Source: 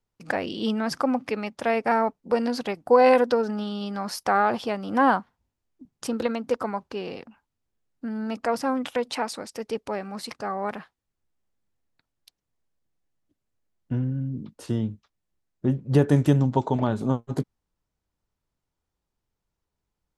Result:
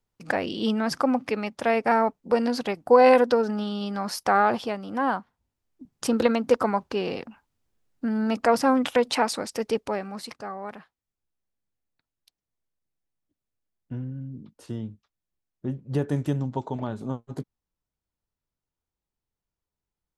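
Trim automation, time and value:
4.52 s +1 dB
5.01 s -6 dB
6.15 s +5 dB
9.66 s +5 dB
10.63 s -7 dB

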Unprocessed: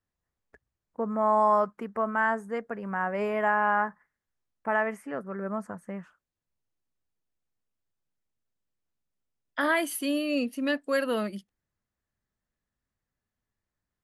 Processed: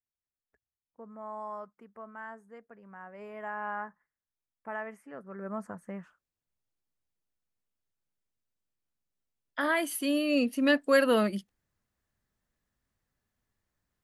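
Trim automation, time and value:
3.13 s -17.5 dB
3.66 s -11 dB
5.10 s -11 dB
5.62 s -3 dB
9.68 s -3 dB
10.75 s +4 dB

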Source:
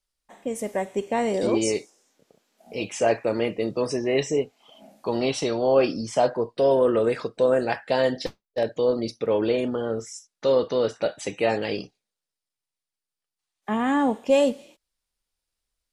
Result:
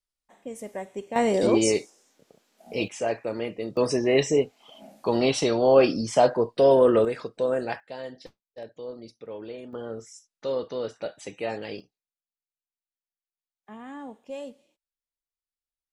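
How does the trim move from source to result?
-8 dB
from 1.16 s +2 dB
from 2.88 s -6 dB
from 3.77 s +2 dB
from 7.05 s -5 dB
from 7.80 s -15.5 dB
from 9.73 s -8 dB
from 11.80 s -18 dB

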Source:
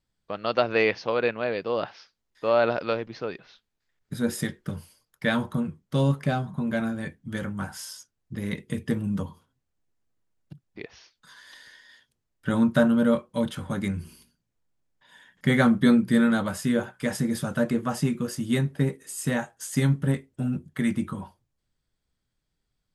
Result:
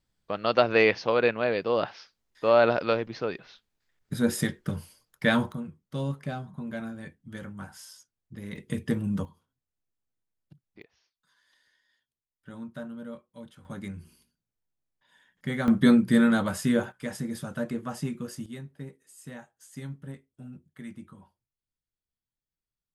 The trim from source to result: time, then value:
+1.5 dB
from 5.52 s -8.5 dB
from 8.56 s -1 dB
from 9.25 s -10 dB
from 10.82 s -19 dB
from 13.65 s -9.5 dB
from 15.68 s 0 dB
from 16.92 s -7 dB
from 18.46 s -16.5 dB

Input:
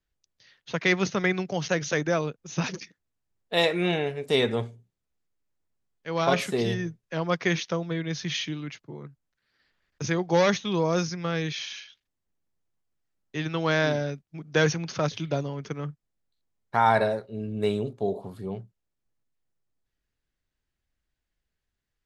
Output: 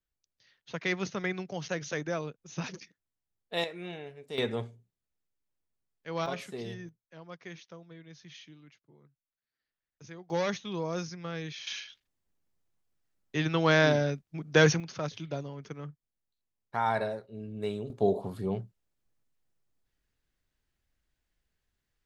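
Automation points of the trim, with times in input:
-8 dB
from 3.64 s -15.5 dB
from 4.38 s -6 dB
from 6.26 s -13 dB
from 6.89 s -20 dB
from 10.30 s -9 dB
from 11.67 s +1 dB
from 14.80 s -8 dB
from 17.90 s +2 dB

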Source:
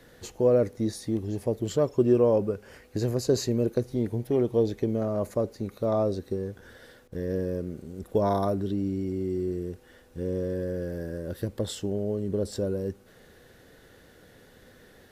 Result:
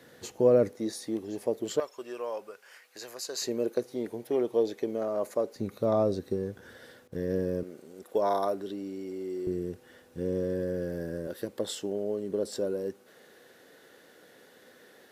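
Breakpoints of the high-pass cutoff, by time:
140 Hz
from 0.73 s 310 Hz
from 1.80 s 1.1 kHz
from 3.42 s 370 Hz
from 5.56 s 110 Hz
from 7.63 s 420 Hz
from 9.47 s 120 Hz
from 11.27 s 290 Hz

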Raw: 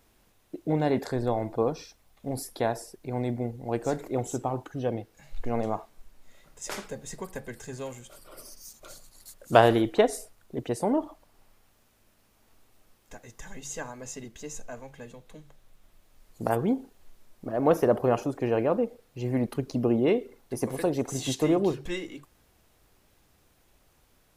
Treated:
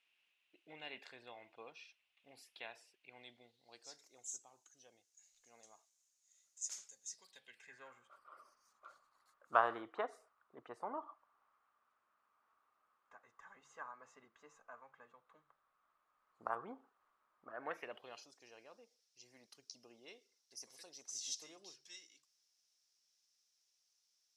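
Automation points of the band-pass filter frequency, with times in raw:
band-pass filter, Q 5.5
3.09 s 2.7 kHz
4.24 s 6.6 kHz
7.04 s 6.6 kHz
8.00 s 1.2 kHz
17.46 s 1.2 kHz
18.33 s 5.5 kHz

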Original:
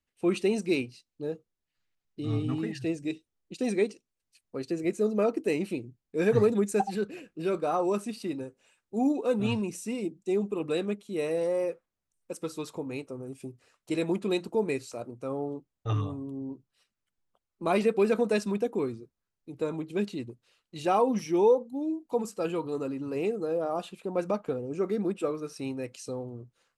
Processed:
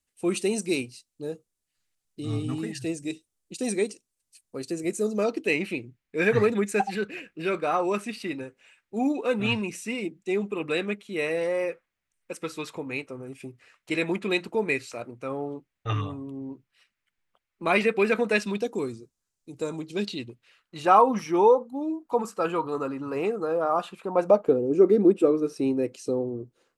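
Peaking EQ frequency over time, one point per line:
peaking EQ +13 dB 1.4 oct
5.05 s 9 kHz
5.57 s 2.1 kHz
18.38 s 2.1 kHz
18.79 s 7.3 kHz
19.74 s 7.3 kHz
20.80 s 1.2 kHz
24.07 s 1.2 kHz
24.53 s 350 Hz

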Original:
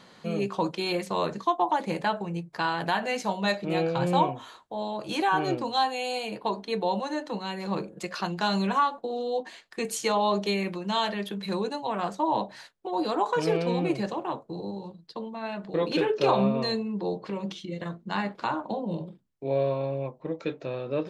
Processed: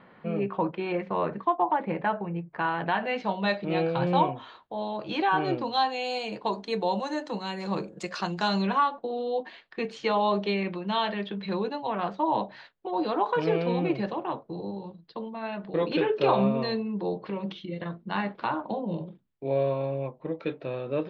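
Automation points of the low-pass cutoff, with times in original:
low-pass 24 dB/octave
2.54 s 2.4 kHz
3.41 s 4 kHz
5.44 s 4 kHz
6.56 s 7.9 kHz
8.37 s 7.9 kHz
8.83 s 3.8 kHz

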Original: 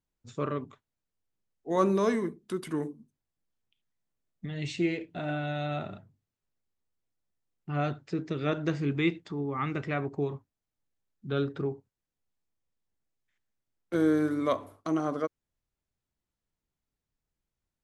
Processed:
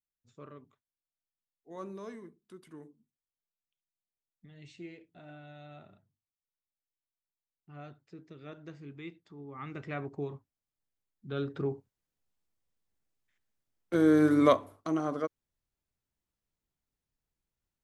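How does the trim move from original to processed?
9.17 s -17.5 dB
9.96 s -6 dB
11.34 s -6 dB
11.74 s +0.5 dB
14.02 s +0.5 dB
14.46 s +7.5 dB
14.62 s -2 dB

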